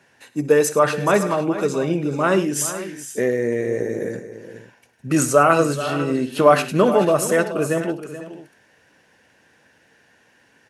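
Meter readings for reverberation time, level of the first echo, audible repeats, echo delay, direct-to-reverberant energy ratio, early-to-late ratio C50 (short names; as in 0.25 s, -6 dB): none, -17.5 dB, 4, 63 ms, none, none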